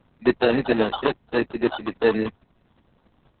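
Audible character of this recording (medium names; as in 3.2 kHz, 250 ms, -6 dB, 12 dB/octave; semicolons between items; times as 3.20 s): aliases and images of a low sample rate 2.2 kHz, jitter 0%; Opus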